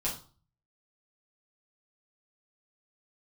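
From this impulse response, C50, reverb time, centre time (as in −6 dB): 8.5 dB, 0.40 s, 24 ms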